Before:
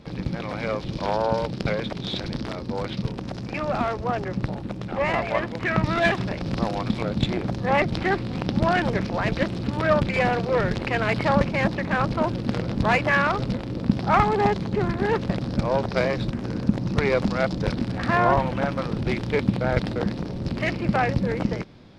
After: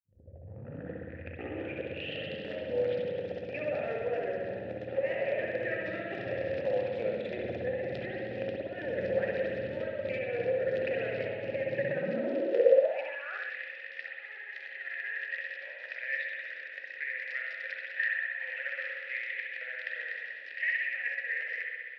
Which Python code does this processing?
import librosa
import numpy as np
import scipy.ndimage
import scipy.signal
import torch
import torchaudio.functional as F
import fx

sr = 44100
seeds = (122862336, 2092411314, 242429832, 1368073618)

y = fx.tape_start_head(x, sr, length_s=2.59)
y = fx.over_compress(y, sr, threshold_db=-25.0, ratio=-0.5)
y = fx.vowel_filter(y, sr, vowel='e')
y = fx.rev_spring(y, sr, rt60_s=2.0, pass_ms=(59,), chirp_ms=40, drr_db=-2.0)
y = fx.filter_sweep_highpass(y, sr, from_hz=87.0, to_hz=1900.0, start_s=11.62, end_s=13.56, q=5.1)